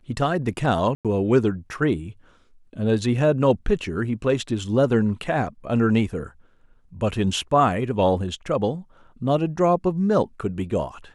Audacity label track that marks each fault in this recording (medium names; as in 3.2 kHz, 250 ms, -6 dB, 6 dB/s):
0.950000	1.050000	dropout 97 ms